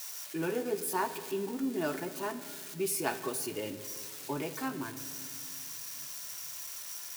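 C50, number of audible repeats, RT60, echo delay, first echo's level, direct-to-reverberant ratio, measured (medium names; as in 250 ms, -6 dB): 12.0 dB, no echo, 2.3 s, no echo, no echo, 10.0 dB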